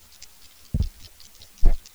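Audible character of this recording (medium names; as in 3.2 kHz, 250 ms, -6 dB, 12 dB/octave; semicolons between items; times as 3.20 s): chopped level 5 Hz, depth 60%, duty 30%; a quantiser's noise floor 10-bit, dither triangular; a shimmering, thickened sound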